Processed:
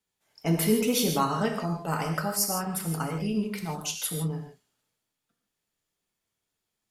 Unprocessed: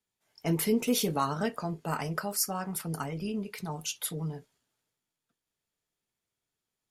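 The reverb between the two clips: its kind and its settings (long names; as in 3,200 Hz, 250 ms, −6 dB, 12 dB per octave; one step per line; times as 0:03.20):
reverb whose tail is shaped and stops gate 180 ms flat, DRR 3 dB
level +2 dB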